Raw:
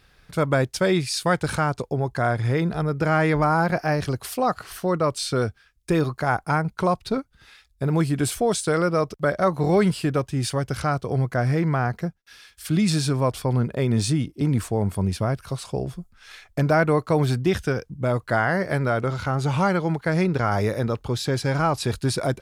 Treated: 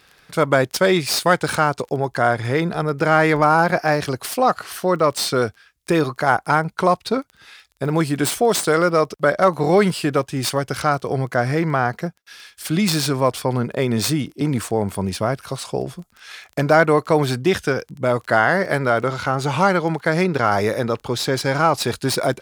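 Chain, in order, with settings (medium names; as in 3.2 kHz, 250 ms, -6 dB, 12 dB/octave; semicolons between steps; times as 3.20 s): tracing distortion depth 0.053 ms; crackle 13 per s -37 dBFS; high-pass 310 Hz 6 dB/octave; trim +6.5 dB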